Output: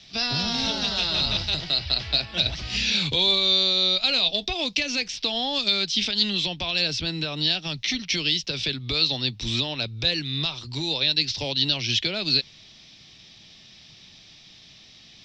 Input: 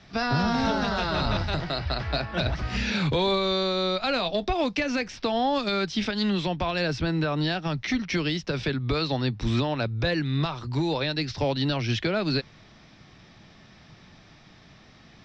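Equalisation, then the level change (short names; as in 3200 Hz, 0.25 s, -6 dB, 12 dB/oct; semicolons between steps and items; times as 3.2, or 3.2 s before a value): resonant high shelf 2200 Hz +13.5 dB, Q 1.5; -5.5 dB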